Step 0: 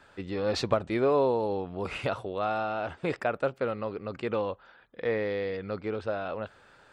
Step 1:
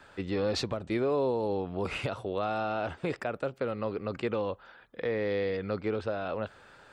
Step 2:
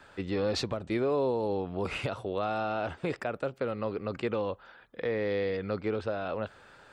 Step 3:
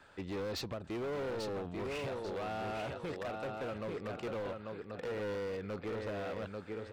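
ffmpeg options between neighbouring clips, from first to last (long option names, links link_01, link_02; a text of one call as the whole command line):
ffmpeg -i in.wav -filter_complex "[0:a]acrossover=split=470|3000[link_01][link_02][link_03];[link_02]acompressor=threshold=-39dB:ratio=1.5[link_04];[link_01][link_04][link_03]amix=inputs=3:normalize=0,alimiter=limit=-23.5dB:level=0:latency=1:release=254,volume=2.5dB" out.wav
ffmpeg -i in.wav -af anull out.wav
ffmpeg -i in.wav -af "aecho=1:1:841|1682|2523|3364:0.531|0.165|0.051|0.0158,volume=30dB,asoftclip=hard,volume=-30dB,volume=-5.5dB" out.wav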